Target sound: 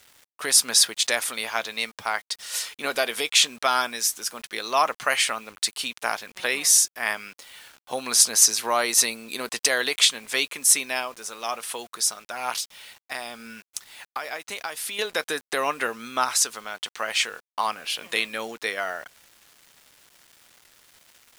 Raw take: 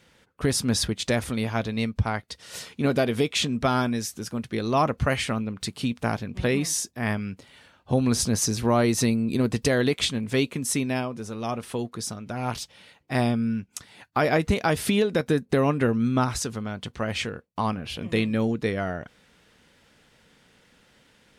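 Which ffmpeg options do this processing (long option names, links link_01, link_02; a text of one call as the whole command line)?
ffmpeg -i in.wav -filter_complex "[0:a]highpass=870,highshelf=frequency=5700:gain=8.5,asettb=1/sr,asplit=3[link_01][link_02][link_03];[link_01]atrim=end=12.604[link_04];[link_02]atrim=start=12.6:end=14.99,asetpts=PTS-STARTPTS,afade=type=in:duration=0.004:curve=qsin,afade=type=out:start_time=2.386:duration=0.004:curve=qsin,acompressor=threshold=-35dB:ratio=5[link_05];[link_03]atrim=start=14.986[link_06];[link_04][link_05]acrossfade=duration=0.004:curve1=hsin:curve2=qsin[link_07];[link_07][link_06]acrossfade=duration=0.004:curve1=qsin:curve2=hsin,acrusher=bits=8:mix=0:aa=0.000001,volume=5dB" out.wav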